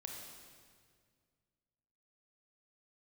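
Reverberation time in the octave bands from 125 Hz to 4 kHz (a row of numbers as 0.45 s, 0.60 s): 2.6 s, 2.3 s, 2.1 s, 1.8 s, 1.8 s, 1.7 s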